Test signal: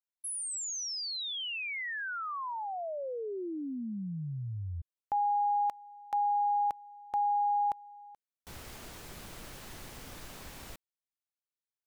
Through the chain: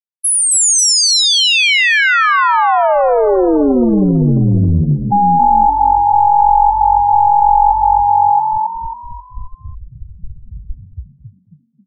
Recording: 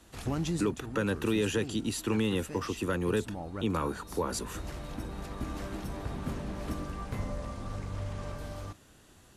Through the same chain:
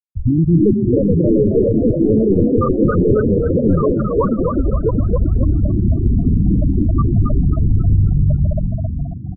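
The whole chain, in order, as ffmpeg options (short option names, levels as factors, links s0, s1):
-filter_complex "[0:a]asplit=2[s0][s1];[s1]aecho=0:1:679:0.473[s2];[s0][s2]amix=inputs=2:normalize=0,apsyclip=31.6,acrusher=bits=6:mode=log:mix=0:aa=0.000001,aeval=exprs='(tanh(2.24*val(0)+0.3)-tanh(0.3))/2.24':c=same,afftfilt=real='re*gte(hypot(re,im),1.58)':imag='im*gte(hypot(re,im),1.58)':win_size=1024:overlap=0.75,asplit=2[s3][s4];[s4]asplit=5[s5][s6][s7][s8][s9];[s5]adelay=270,afreqshift=45,volume=0.631[s10];[s6]adelay=540,afreqshift=90,volume=0.245[s11];[s7]adelay=810,afreqshift=135,volume=0.0955[s12];[s8]adelay=1080,afreqshift=180,volume=0.0376[s13];[s9]adelay=1350,afreqshift=225,volume=0.0146[s14];[s10][s11][s12][s13][s14]amix=inputs=5:normalize=0[s15];[s3][s15]amix=inputs=2:normalize=0,volume=0.841"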